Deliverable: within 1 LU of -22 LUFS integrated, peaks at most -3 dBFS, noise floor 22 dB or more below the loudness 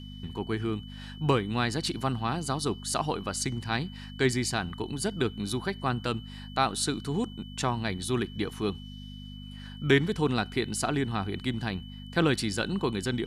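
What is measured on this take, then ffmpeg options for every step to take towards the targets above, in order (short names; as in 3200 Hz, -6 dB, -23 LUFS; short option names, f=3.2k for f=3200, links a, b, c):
hum 50 Hz; harmonics up to 250 Hz; hum level -40 dBFS; steady tone 3000 Hz; tone level -49 dBFS; loudness -30.0 LUFS; peak -9.5 dBFS; loudness target -22.0 LUFS
-> -af "bandreject=f=50:t=h:w=4,bandreject=f=100:t=h:w=4,bandreject=f=150:t=h:w=4,bandreject=f=200:t=h:w=4,bandreject=f=250:t=h:w=4"
-af "bandreject=f=3k:w=30"
-af "volume=8dB,alimiter=limit=-3dB:level=0:latency=1"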